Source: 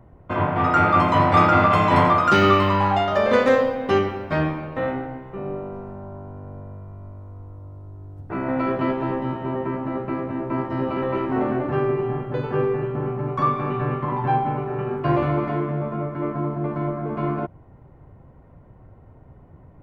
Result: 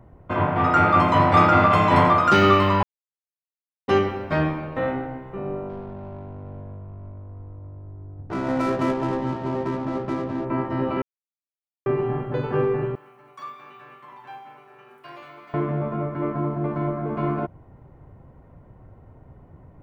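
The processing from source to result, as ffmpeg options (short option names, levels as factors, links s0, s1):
-filter_complex "[0:a]asplit=3[s0][s1][s2];[s0]afade=t=out:st=5.68:d=0.02[s3];[s1]adynamicsmooth=sensitivity=7:basefreq=930,afade=t=in:st=5.68:d=0.02,afade=t=out:st=10.44:d=0.02[s4];[s2]afade=t=in:st=10.44:d=0.02[s5];[s3][s4][s5]amix=inputs=3:normalize=0,asettb=1/sr,asplit=3[s6][s7][s8];[s6]atrim=end=12.954[s9];[s7]atrim=start=12.95:end=15.54,asetpts=PTS-STARTPTS,afade=t=in:d=0.004:c=qsin,afade=t=out:st=2.586:d=0.004:c=qsin,aderivative[s10];[s8]atrim=start=15.536[s11];[s9][s10]acrossfade=d=0.004:c1=hsin:c2=qsin[s12];[s12][s11]acrossfade=d=0.004:c1=qsin:c2=hsin,asplit=5[s13][s14][s15][s16][s17];[s13]atrim=end=2.83,asetpts=PTS-STARTPTS,afade=t=out:st=2.826:d=0.004:c=hsin[s18];[s14]atrim=start=2.83:end=3.88,asetpts=PTS-STARTPTS,volume=0[s19];[s15]atrim=start=3.88:end=11.02,asetpts=PTS-STARTPTS,afade=t=in:d=0.004:c=hsin,afade=t=out:st=7.136:d=0.004:c=hsin[s20];[s16]atrim=start=11.02:end=11.86,asetpts=PTS-STARTPTS,volume=0[s21];[s17]atrim=start=11.86,asetpts=PTS-STARTPTS,afade=t=in:d=0.004:c=hsin[s22];[s18][s19][s20][s21][s22]concat=n=5:v=0:a=1"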